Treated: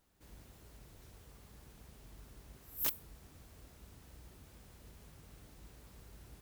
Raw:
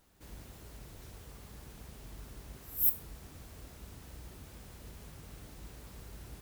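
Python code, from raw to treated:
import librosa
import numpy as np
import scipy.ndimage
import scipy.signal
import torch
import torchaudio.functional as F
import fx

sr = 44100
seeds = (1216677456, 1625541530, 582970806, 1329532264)

y = (np.mod(10.0 ** (16.0 / 20.0) * x + 1.0, 2.0) - 1.0) / 10.0 ** (16.0 / 20.0)
y = y * 10.0 ** (-7.0 / 20.0)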